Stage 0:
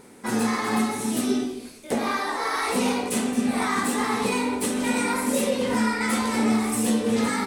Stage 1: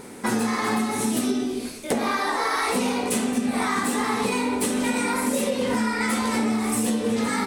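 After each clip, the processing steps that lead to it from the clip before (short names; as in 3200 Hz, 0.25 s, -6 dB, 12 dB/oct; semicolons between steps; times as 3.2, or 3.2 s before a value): compressor 6:1, threshold -29 dBFS, peak gain reduction 11 dB; gain +8 dB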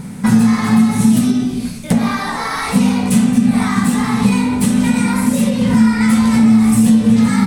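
resonant low shelf 250 Hz +12 dB, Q 3; gain +4 dB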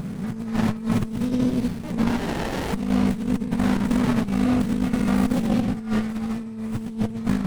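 negative-ratio compressor -16 dBFS, ratio -0.5; running maximum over 33 samples; gain -5.5 dB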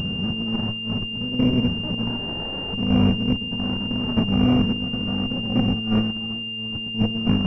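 octaver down 1 oct, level -6 dB; chopper 0.72 Hz, depth 60%, duty 40%; pulse-width modulation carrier 2800 Hz; gain +2 dB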